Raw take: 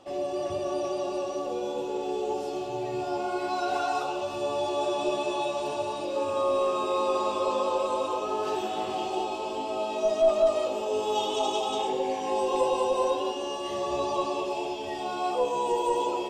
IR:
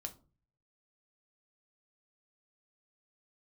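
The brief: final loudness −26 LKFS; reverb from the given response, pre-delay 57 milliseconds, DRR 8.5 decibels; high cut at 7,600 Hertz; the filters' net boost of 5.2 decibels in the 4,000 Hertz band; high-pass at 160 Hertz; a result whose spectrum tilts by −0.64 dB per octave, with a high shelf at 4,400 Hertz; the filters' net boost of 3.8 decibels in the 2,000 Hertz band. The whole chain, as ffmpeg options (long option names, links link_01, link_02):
-filter_complex "[0:a]highpass=160,lowpass=7600,equalizer=frequency=2000:width_type=o:gain=3.5,equalizer=frequency=4000:width_type=o:gain=7.5,highshelf=frequency=4400:gain=-4,asplit=2[link_01][link_02];[1:a]atrim=start_sample=2205,adelay=57[link_03];[link_02][link_03]afir=irnorm=-1:irlink=0,volume=-5.5dB[link_04];[link_01][link_04]amix=inputs=2:normalize=0,volume=1dB"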